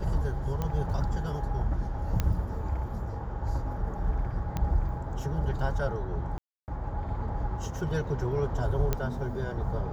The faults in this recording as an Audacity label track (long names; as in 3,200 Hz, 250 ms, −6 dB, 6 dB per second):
0.620000	0.620000	click −19 dBFS
2.200000	2.200000	click −14 dBFS
4.570000	4.570000	click −18 dBFS
6.380000	6.680000	drop-out 299 ms
8.930000	8.930000	click −13 dBFS